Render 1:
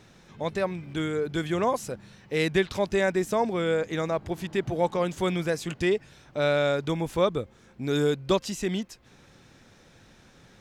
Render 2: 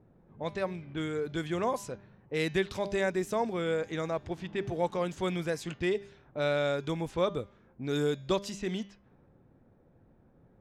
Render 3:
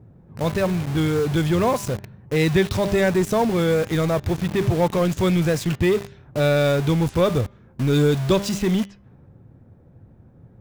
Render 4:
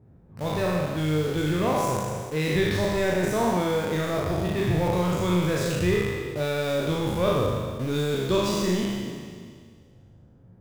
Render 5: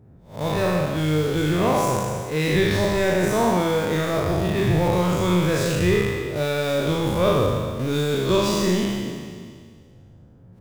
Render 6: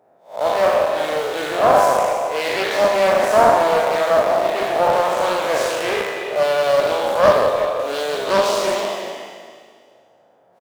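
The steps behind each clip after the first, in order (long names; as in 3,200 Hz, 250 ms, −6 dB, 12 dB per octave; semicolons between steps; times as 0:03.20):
hum removal 199.9 Hz, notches 34; low-pass that shuts in the quiet parts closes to 620 Hz, open at −24 dBFS; level −5 dB
parametric band 100 Hz +12 dB 1.7 octaves; in parallel at −8.5 dB: log-companded quantiser 2 bits; on the sum: level +6 dB
peak hold with a decay on every bin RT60 1.91 s; on a send: flutter between parallel walls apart 6.7 metres, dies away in 0.4 s; on the sum: level −8.5 dB
peak hold with a rise ahead of every peak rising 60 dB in 0.34 s; level +3 dB
high-pass with resonance 660 Hz, resonance Q 3.5; far-end echo of a speakerphone 340 ms, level −8 dB; highs frequency-modulated by the lows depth 0.27 ms; level +2 dB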